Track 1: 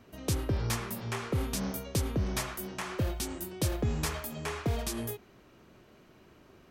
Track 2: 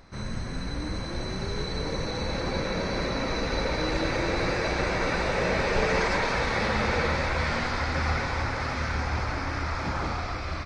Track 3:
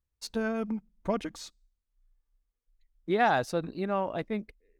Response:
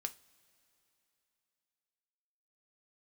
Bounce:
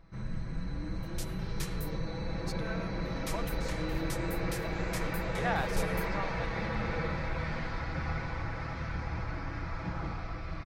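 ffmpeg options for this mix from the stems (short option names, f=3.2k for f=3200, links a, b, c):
-filter_complex "[0:a]highpass=1.4k,adelay=900,volume=-6.5dB,asplit=3[a][b][c];[a]atrim=end=1.99,asetpts=PTS-STARTPTS,afade=t=out:st=1.986:d=0.004:c=hsin[d];[b]atrim=start=1.99:end=3.05,asetpts=PTS-STARTPTS,volume=0[e];[c]atrim=start=3.05,asetpts=PTS-STARTPTS,afade=t=in:d=0.004:c=hsin[f];[d][e][f]concat=n=3:v=0:a=1[g];[1:a]bass=f=250:g=8,treble=f=4k:g=-8,aecho=1:1:6.1:0.5,volume=-11dB[h];[2:a]highpass=790,adelay=2250,volume=-5.5dB[i];[g][h][i]amix=inputs=3:normalize=0"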